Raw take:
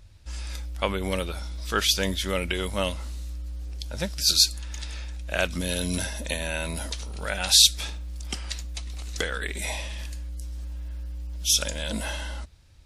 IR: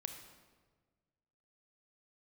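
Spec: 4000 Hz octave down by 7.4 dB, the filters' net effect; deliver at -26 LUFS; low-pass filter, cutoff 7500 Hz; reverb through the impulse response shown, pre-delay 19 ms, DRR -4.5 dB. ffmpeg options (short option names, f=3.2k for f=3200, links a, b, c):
-filter_complex "[0:a]lowpass=7.5k,equalizer=f=4k:t=o:g=-8.5,asplit=2[a][b];[1:a]atrim=start_sample=2205,adelay=19[c];[b][c]afir=irnorm=-1:irlink=0,volume=7dB[d];[a][d]amix=inputs=2:normalize=0,volume=-1dB"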